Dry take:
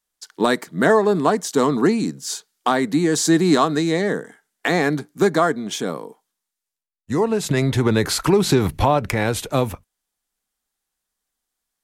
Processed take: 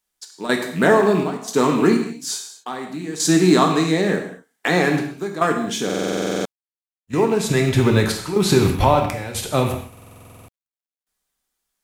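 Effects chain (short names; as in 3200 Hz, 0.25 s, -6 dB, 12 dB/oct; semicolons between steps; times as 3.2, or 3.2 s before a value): rattling part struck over -26 dBFS, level -27 dBFS; step gate "x.xxx.xx.x...xxx" 61 bpm -12 dB; non-linear reverb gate 0.27 s falling, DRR 2.5 dB; companded quantiser 8-bit; stuck buffer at 5.85/9.88, samples 2048, times 12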